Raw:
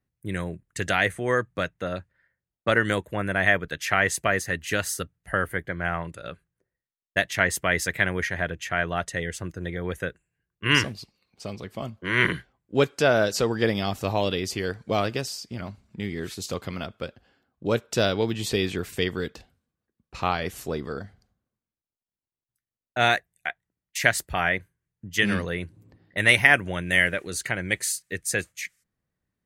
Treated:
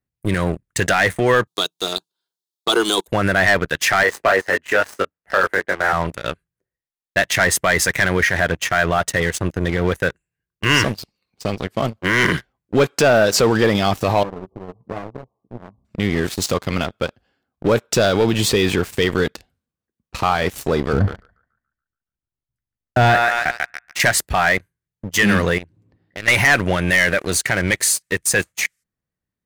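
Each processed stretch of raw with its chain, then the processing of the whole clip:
1.47–3.08 HPF 250 Hz 24 dB/oct + resonant high shelf 2800 Hz +9.5 dB, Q 3 + fixed phaser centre 370 Hz, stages 8
4.03–5.93 median filter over 3 samples + three-band isolator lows -18 dB, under 300 Hz, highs -16 dB, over 2300 Hz + doubler 21 ms -4 dB
14.23–15.85 compressor 2:1, threshold -47 dBFS + brick-wall FIR low-pass 1200 Hz + doubler 16 ms -5 dB
20.93–24 RIAA curve playback + narrowing echo 0.142 s, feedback 45%, band-pass 1600 Hz, level -4 dB
25.58–26.28 compressor 3:1, threshold -41 dBFS + air absorption 68 m
whole clip: dynamic EQ 1000 Hz, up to +4 dB, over -34 dBFS, Q 0.71; sample leveller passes 3; limiter -9.5 dBFS; gain +2 dB

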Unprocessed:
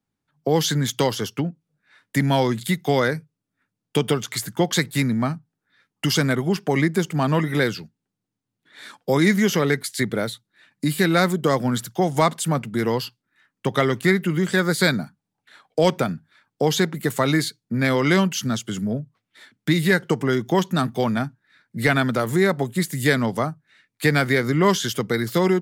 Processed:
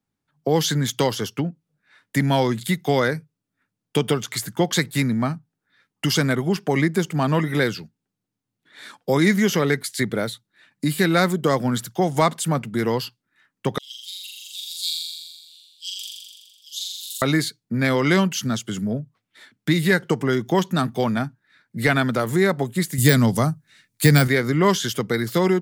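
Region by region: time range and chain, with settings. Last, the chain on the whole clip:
13.78–17.22 steep high-pass 2800 Hz 96 dB/oct + auto swell 0.125 s + flutter echo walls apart 7.2 m, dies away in 1.5 s
22.98–24.28 de-esser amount 50% + tone controls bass +9 dB, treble +12 dB
whole clip: dry

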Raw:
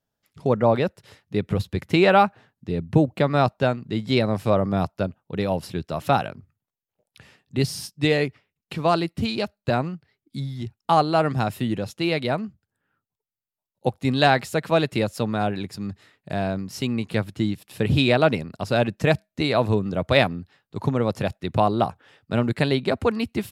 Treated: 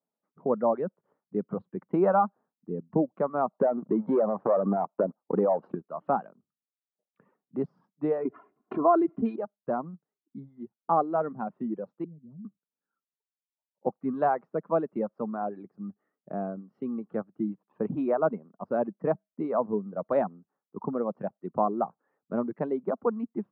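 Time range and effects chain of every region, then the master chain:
3.53–5.75 bell 650 Hz +11 dB 2.9 oct + sample leveller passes 2 + compressor 8:1, threshold -14 dBFS
8.25–9.36 comb 2.9 ms, depth 89% + fast leveller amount 50%
12.04–12.45 Chebyshev band-stop 130–9600 Hz + low shelf 240 Hz +3.5 dB + hard clip -24.5 dBFS
15.46–17.52 de-esser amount 35% + notch 970 Hz, Q 6.3
whole clip: elliptic band-pass 190–1200 Hz, stop band 80 dB; reverb removal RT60 1.6 s; gain -4.5 dB

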